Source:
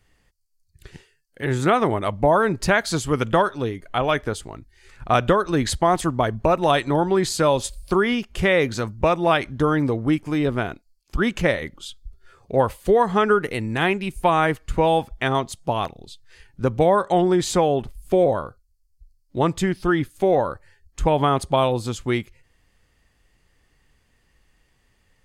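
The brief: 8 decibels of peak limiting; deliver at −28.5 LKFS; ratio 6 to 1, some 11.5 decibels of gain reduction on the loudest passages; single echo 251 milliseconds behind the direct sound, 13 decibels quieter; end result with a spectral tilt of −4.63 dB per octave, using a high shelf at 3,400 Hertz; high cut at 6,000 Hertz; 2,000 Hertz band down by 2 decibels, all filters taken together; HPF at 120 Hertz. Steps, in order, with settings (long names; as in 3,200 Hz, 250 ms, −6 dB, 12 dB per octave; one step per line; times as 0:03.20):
high-pass filter 120 Hz
low-pass filter 6,000 Hz
parametric band 2,000 Hz −5 dB
high-shelf EQ 3,400 Hz +8.5 dB
downward compressor 6 to 1, threshold −26 dBFS
brickwall limiter −20.5 dBFS
single-tap delay 251 ms −13 dB
level +4 dB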